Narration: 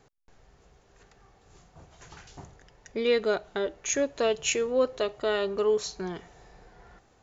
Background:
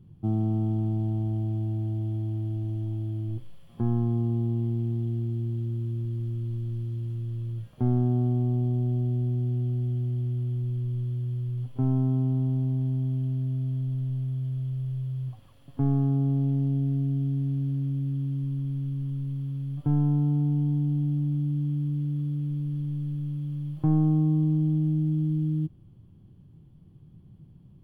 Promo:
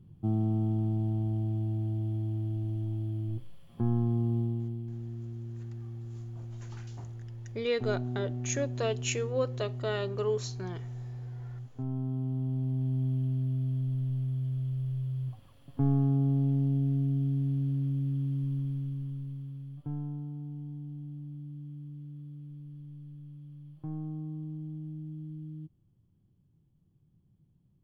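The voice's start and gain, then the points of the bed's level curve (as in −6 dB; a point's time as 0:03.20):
4.60 s, −5.5 dB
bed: 0:04.39 −2.5 dB
0:04.84 −10.5 dB
0:11.82 −10.5 dB
0:13.04 −2 dB
0:18.57 −2 dB
0:20.32 −15.5 dB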